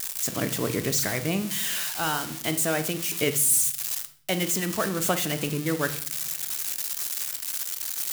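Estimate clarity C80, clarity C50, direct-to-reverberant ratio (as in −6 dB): 18.0 dB, 13.5 dB, 9.0 dB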